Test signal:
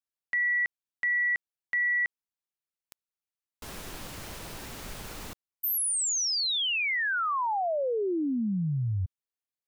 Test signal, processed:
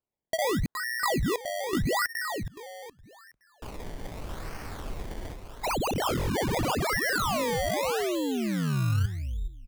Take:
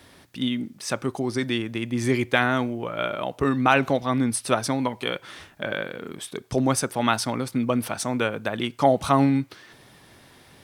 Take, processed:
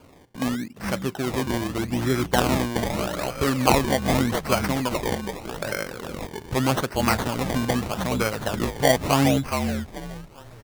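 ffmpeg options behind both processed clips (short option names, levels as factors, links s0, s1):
-filter_complex "[0:a]asubboost=boost=2:cutoff=120,asplit=5[s0][s1][s2][s3][s4];[s1]adelay=419,afreqshift=-52,volume=0.501[s5];[s2]adelay=838,afreqshift=-104,volume=0.155[s6];[s3]adelay=1257,afreqshift=-156,volume=0.0484[s7];[s4]adelay=1676,afreqshift=-208,volume=0.015[s8];[s0][s5][s6][s7][s8]amix=inputs=5:normalize=0,acrusher=samples=23:mix=1:aa=0.000001:lfo=1:lforange=23:lforate=0.82"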